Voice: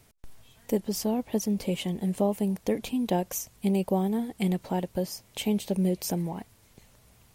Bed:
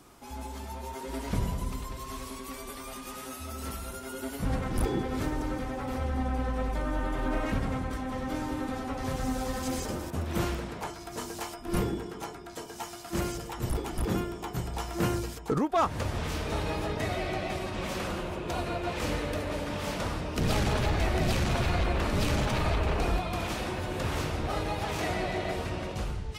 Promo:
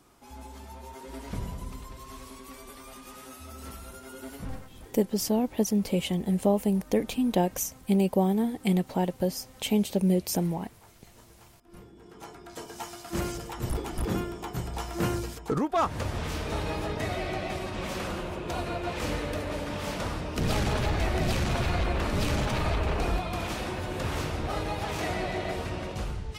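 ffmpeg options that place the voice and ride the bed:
-filter_complex "[0:a]adelay=4250,volume=1.26[s0];[1:a]volume=6.31,afade=t=out:st=4.36:d=0.33:silence=0.158489,afade=t=in:st=11.94:d=0.68:silence=0.0891251[s1];[s0][s1]amix=inputs=2:normalize=0"

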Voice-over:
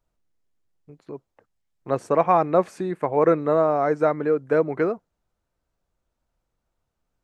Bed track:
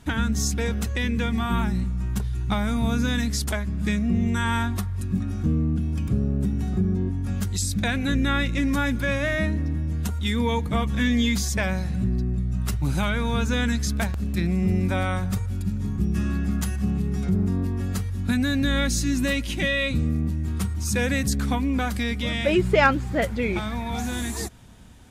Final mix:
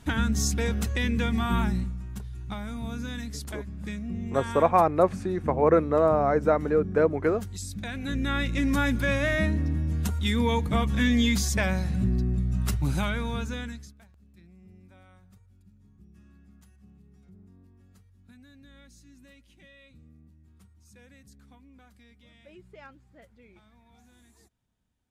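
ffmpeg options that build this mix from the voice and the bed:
-filter_complex "[0:a]adelay=2450,volume=0.794[s0];[1:a]volume=2.66,afade=t=out:st=1.7:d=0.33:silence=0.334965,afade=t=in:st=7.88:d=0.92:silence=0.316228,afade=t=out:st=12.71:d=1.23:silence=0.0334965[s1];[s0][s1]amix=inputs=2:normalize=0"

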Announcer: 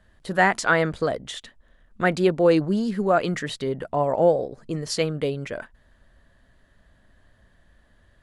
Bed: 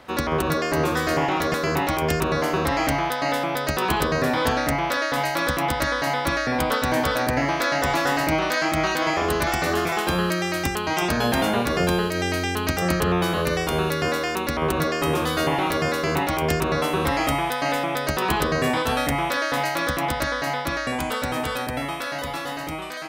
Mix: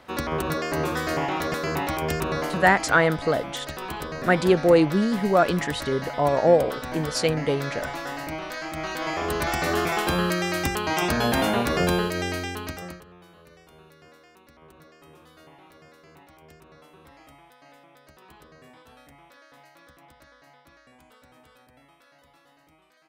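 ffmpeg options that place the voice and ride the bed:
-filter_complex "[0:a]adelay=2250,volume=1.12[s0];[1:a]volume=2,afade=t=out:st=2.38:d=0.38:silence=0.446684,afade=t=in:st=8.7:d=1.1:silence=0.316228,afade=t=out:st=11.95:d=1.09:silence=0.0398107[s1];[s0][s1]amix=inputs=2:normalize=0"

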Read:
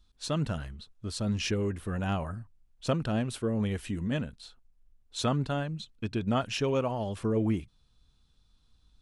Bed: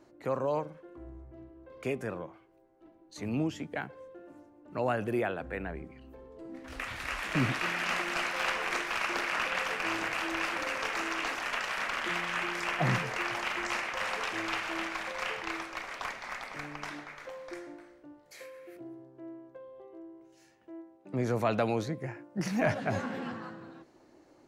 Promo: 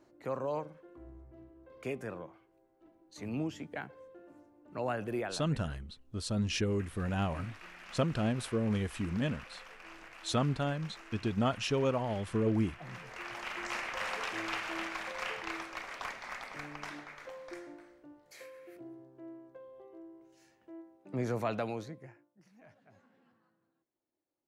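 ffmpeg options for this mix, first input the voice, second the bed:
-filter_complex "[0:a]adelay=5100,volume=0.794[s0];[1:a]volume=3.76,afade=t=out:st=5.16:d=0.42:silence=0.188365,afade=t=in:st=12.89:d=1.03:silence=0.158489,afade=t=out:st=21.22:d=1.15:silence=0.0375837[s1];[s0][s1]amix=inputs=2:normalize=0"

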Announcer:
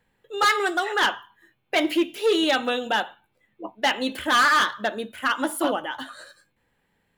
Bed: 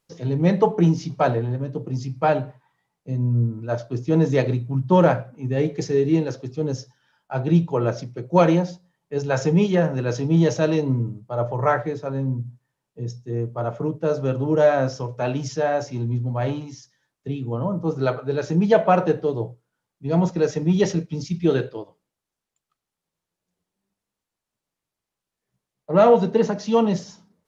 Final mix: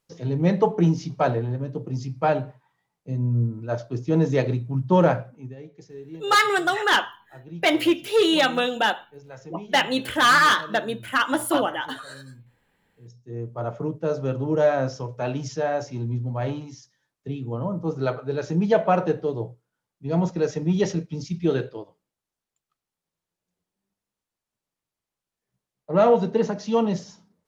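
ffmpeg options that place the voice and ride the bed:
-filter_complex "[0:a]adelay=5900,volume=1.26[s0];[1:a]volume=5.96,afade=t=out:st=5.26:d=0.3:silence=0.11885,afade=t=in:st=13.02:d=0.62:silence=0.133352[s1];[s0][s1]amix=inputs=2:normalize=0"

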